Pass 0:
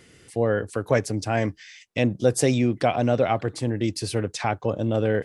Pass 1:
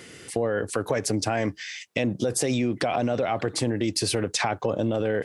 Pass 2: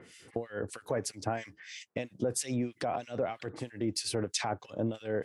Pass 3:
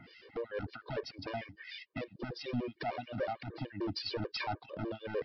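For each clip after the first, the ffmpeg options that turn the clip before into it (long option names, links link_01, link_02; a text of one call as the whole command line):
ffmpeg -i in.wav -af "highpass=frequency=190:poles=1,alimiter=limit=-20dB:level=0:latency=1:release=31,acompressor=threshold=-30dB:ratio=6,volume=9dB" out.wav
ffmpeg -i in.wav -filter_complex "[0:a]acrossover=split=1800[link_01][link_02];[link_01]aeval=exprs='val(0)*(1-1/2+1/2*cos(2*PI*3.1*n/s))':channel_layout=same[link_03];[link_02]aeval=exprs='val(0)*(1-1/2-1/2*cos(2*PI*3.1*n/s))':channel_layout=same[link_04];[link_03][link_04]amix=inputs=2:normalize=0,volume=-5dB" out.wav
ffmpeg -i in.wav -af "aresample=11025,asoftclip=type=hard:threshold=-32.5dB,aresample=44100,afftfilt=real='re*gt(sin(2*PI*6.7*pts/sr)*(1-2*mod(floor(b*sr/1024/310),2)),0)':imag='im*gt(sin(2*PI*6.7*pts/sr)*(1-2*mod(floor(b*sr/1024/310),2)),0)':win_size=1024:overlap=0.75,volume=3dB" out.wav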